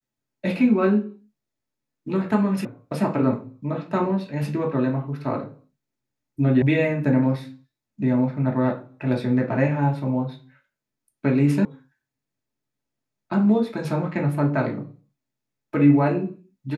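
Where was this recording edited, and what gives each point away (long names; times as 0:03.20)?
0:02.65: cut off before it has died away
0:06.62: cut off before it has died away
0:11.65: cut off before it has died away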